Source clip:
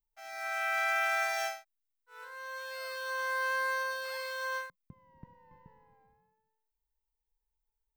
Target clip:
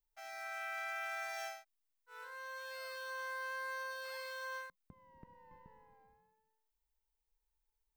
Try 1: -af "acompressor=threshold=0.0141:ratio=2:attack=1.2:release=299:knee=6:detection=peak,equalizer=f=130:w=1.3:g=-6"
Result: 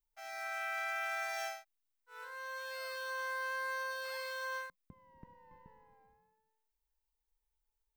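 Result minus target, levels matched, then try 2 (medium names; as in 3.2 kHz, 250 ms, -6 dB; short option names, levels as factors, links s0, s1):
compression: peak gain reduction -3.5 dB
-af "acompressor=threshold=0.00596:ratio=2:attack=1.2:release=299:knee=6:detection=peak,equalizer=f=130:w=1.3:g=-6"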